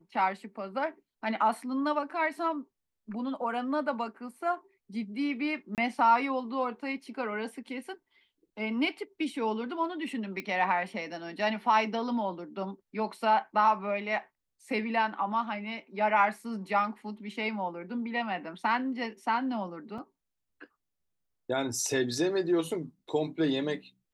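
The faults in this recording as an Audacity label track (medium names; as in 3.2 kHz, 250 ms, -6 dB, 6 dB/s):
5.750000	5.780000	dropout 28 ms
10.400000	10.400000	pop -22 dBFS
19.980000	19.980000	dropout 3.9 ms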